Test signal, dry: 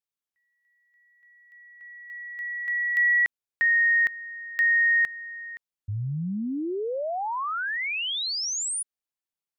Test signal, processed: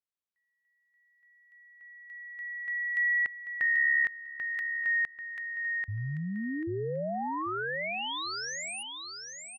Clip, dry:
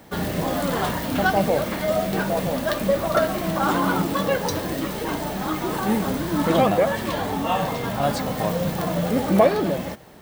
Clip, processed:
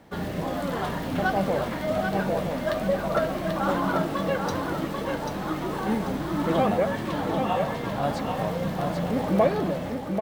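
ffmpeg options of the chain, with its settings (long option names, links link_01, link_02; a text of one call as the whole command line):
ffmpeg -i in.wav -af "aemphasis=mode=reproduction:type=cd,aecho=1:1:789|1578|2367|3156:0.562|0.152|0.041|0.0111,volume=-5dB" out.wav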